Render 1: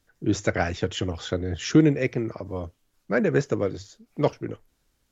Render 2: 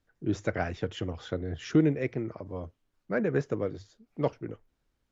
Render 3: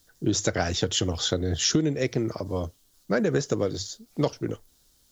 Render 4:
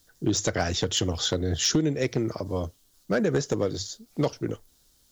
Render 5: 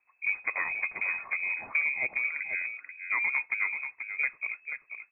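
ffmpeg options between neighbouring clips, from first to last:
-af "lowpass=f=2500:p=1,volume=0.531"
-af "aexciter=amount=5:drive=7.4:freq=3400,acompressor=threshold=0.0398:ratio=10,volume=2.66"
-af "volume=5.96,asoftclip=hard,volume=0.168"
-af "aecho=1:1:484:0.398,lowpass=f=2200:t=q:w=0.5098,lowpass=f=2200:t=q:w=0.6013,lowpass=f=2200:t=q:w=0.9,lowpass=f=2200:t=q:w=2.563,afreqshift=-2600,volume=0.562"

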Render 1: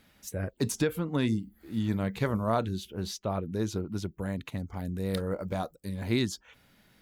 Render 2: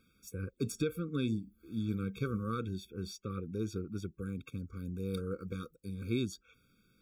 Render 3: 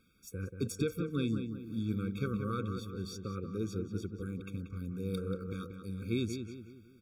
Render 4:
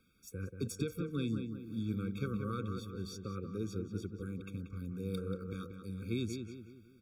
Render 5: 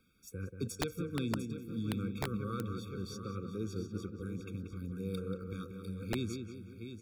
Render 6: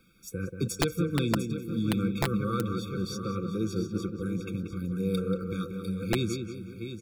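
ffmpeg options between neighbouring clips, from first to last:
-af "afftfilt=real='re*eq(mod(floor(b*sr/1024/540),2),0)':imag='im*eq(mod(floor(b*sr/1024/540),2),0)':win_size=1024:overlap=0.75,volume=0.531"
-filter_complex "[0:a]asplit=2[s0][s1];[s1]adelay=184,lowpass=f=2500:p=1,volume=0.447,asplit=2[s2][s3];[s3]adelay=184,lowpass=f=2500:p=1,volume=0.45,asplit=2[s4][s5];[s5]adelay=184,lowpass=f=2500:p=1,volume=0.45,asplit=2[s6][s7];[s7]adelay=184,lowpass=f=2500:p=1,volume=0.45,asplit=2[s8][s9];[s9]adelay=184,lowpass=f=2500:p=1,volume=0.45[s10];[s0][s2][s4][s6][s8][s10]amix=inputs=6:normalize=0"
-filter_complex "[0:a]acrossover=split=240|3000[s0][s1][s2];[s1]acompressor=threshold=0.02:ratio=6[s3];[s0][s3][s2]amix=inputs=3:normalize=0,volume=0.794"
-af "aecho=1:1:700:0.316,aeval=exprs='(mod(17.8*val(0)+1,2)-1)/17.8':c=same"
-af "aecho=1:1:5.9:0.42,volume=2.51"

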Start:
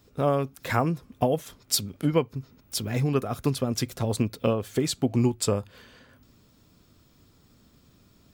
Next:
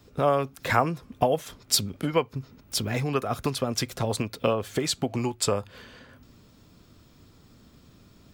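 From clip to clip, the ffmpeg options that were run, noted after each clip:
-filter_complex "[0:a]highshelf=f=7500:g=-6,acrossover=split=530|1100[s0][s1][s2];[s0]acompressor=threshold=0.0251:ratio=6[s3];[s3][s1][s2]amix=inputs=3:normalize=0,volume=1.68"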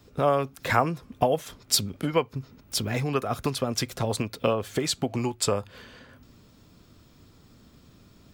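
-af anull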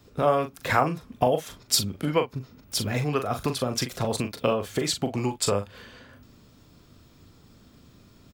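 -filter_complex "[0:a]asplit=2[s0][s1];[s1]adelay=40,volume=0.398[s2];[s0][s2]amix=inputs=2:normalize=0"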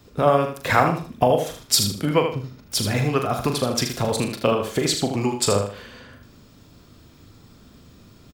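-af "aecho=1:1:78|156|234:0.447|0.121|0.0326,volume=1.58"

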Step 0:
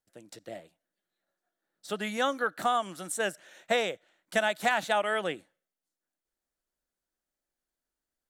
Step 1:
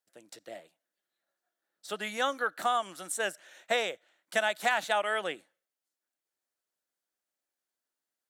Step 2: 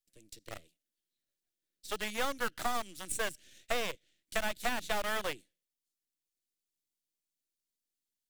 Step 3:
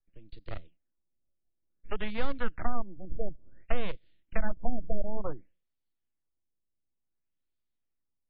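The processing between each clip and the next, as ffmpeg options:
-af "highpass=f=490:p=1"
-filter_complex "[0:a]aeval=exprs='if(lt(val(0),0),0.251*val(0),val(0))':c=same,acrossover=split=360[s0][s1];[s1]acompressor=threshold=0.0224:ratio=10[s2];[s0][s2]amix=inputs=2:normalize=0,acrossover=split=420|2300[s3][s4][s5];[s4]acrusher=bits=6:mix=0:aa=0.000001[s6];[s3][s6][s5]amix=inputs=3:normalize=0,volume=1.33"
-filter_complex "[0:a]acrossover=split=400[s0][s1];[s1]acompressor=threshold=0.02:ratio=6[s2];[s0][s2]amix=inputs=2:normalize=0,aemphasis=mode=reproduction:type=bsi,afftfilt=real='re*lt(b*sr/1024,710*pow(5000/710,0.5+0.5*sin(2*PI*0.56*pts/sr)))':imag='im*lt(b*sr/1024,710*pow(5000/710,0.5+0.5*sin(2*PI*0.56*pts/sr)))':win_size=1024:overlap=0.75,volume=1.12"

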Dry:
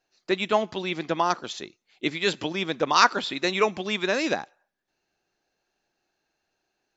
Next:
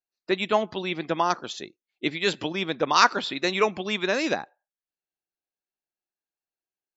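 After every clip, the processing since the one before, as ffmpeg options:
-af "afftdn=nr=23:nf=-49"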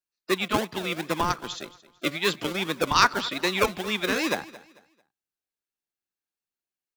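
-filter_complex "[0:a]acrossover=split=120|720|2300[s0][s1][s2][s3];[s1]acrusher=samples=40:mix=1:aa=0.000001:lfo=1:lforange=24:lforate=2.5[s4];[s0][s4][s2][s3]amix=inputs=4:normalize=0,asoftclip=type=hard:threshold=0.447,aecho=1:1:222|444|666:0.112|0.0337|0.0101"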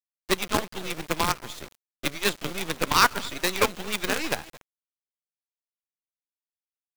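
-af "acrusher=bits=4:dc=4:mix=0:aa=0.000001"

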